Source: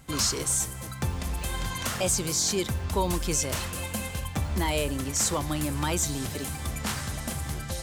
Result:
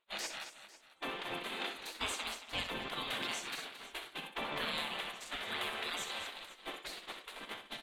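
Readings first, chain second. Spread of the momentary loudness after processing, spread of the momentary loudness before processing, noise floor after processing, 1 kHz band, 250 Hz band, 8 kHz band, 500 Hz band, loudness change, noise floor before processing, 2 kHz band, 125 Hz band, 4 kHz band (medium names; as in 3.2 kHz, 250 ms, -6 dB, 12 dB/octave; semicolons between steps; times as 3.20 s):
9 LU, 8 LU, -60 dBFS, -8.0 dB, -17.5 dB, -21.0 dB, -13.5 dB, -11.5 dB, -37 dBFS, -3.5 dB, -27.5 dB, -5.5 dB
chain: FFT filter 1.6 kHz 0 dB, 3.5 kHz +5 dB, 5.3 kHz -20 dB; gate -31 dBFS, range -21 dB; spectral gate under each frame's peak -20 dB weak; on a send: multi-tap echo 63/223/499 ms -9.5/-11.5/-18 dB; on the sum: trim +2 dB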